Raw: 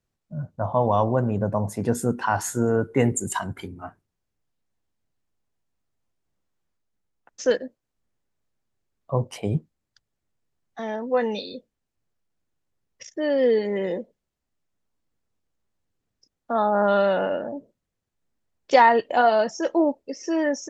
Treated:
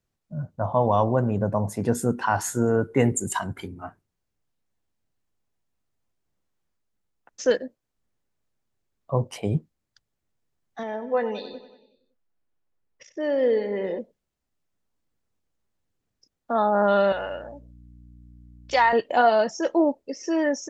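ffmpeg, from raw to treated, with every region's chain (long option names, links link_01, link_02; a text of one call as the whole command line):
ffmpeg -i in.wav -filter_complex "[0:a]asettb=1/sr,asplit=3[link_01][link_02][link_03];[link_01]atrim=end=10.834[link_04];[link_02]atrim=start=10.83:end=13.99,asetpts=PTS-STARTPTS,afade=type=in:duration=0.004:curve=qsin,afade=type=out:start_time=3.156:duration=0.004:curve=qsin,lowpass=frequency=2000:poles=1,equalizer=frequency=110:width=0.46:gain=-7,aecho=1:1:93|186|279|372|465|558:0.2|0.12|0.0718|0.0431|0.0259|0.0155,atrim=end_sample=139356[link_05];[link_03]atrim=start=13.986[link_06];[link_04][link_05]acrossfade=duration=0.004:curve1=hsin:curve2=qsin[link_07];[link_07][link_06]acrossfade=duration=0.004:curve1=qsin:curve2=hsin,asettb=1/sr,asplit=3[link_08][link_09][link_10];[link_08]atrim=end=17.124[link_11];[link_09]atrim=start=17.12:end=18.93,asetpts=PTS-STARTPTS,afade=type=in:duration=0.004:curve=qsin,afade=type=out:start_time=1.806:duration=0.004:curve=qsin,highpass=frequency=1200:poles=1,aeval=exprs='val(0)+0.00447*(sin(2*PI*60*n/s)+sin(2*PI*2*60*n/s)/2+sin(2*PI*3*60*n/s)/3+sin(2*PI*4*60*n/s)/4+sin(2*PI*5*60*n/s)/5)':channel_layout=same[link_12];[link_10]atrim=start=18.926[link_13];[link_11][link_12]acrossfade=duration=0.004:curve1=hsin:curve2=qsin[link_14];[link_14][link_13]acrossfade=duration=0.004:curve1=qsin:curve2=hsin" out.wav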